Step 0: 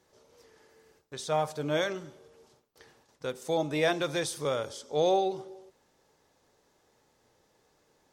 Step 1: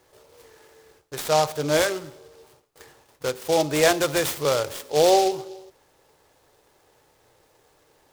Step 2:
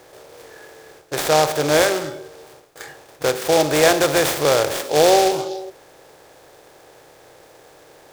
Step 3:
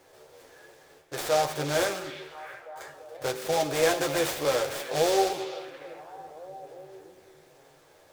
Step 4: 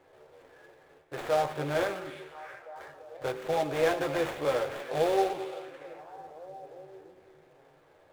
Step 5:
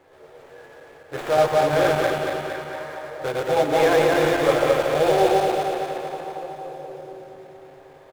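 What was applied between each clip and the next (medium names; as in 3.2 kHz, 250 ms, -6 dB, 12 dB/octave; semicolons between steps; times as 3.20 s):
peaking EQ 210 Hz -14.5 dB 0.44 oct; delay time shaken by noise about 4.3 kHz, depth 0.055 ms; trim +8.5 dB
spectral levelling over time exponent 0.6; spectral noise reduction 9 dB; trim +2 dB
repeats whose band climbs or falls 341 ms, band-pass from 2.8 kHz, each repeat -0.7 oct, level -8.5 dB; chorus voices 4, 0.54 Hz, delay 11 ms, depth 3.6 ms; trim -7 dB
median filter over 9 samples; treble shelf 4.8 kHz -4.5 dB; trim -2 dB
backward echo that repeats 115 ms, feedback 74%, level 0 dB; feedback delay 473 ms, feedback 48%, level -17.5 dB; trim +5.5 dB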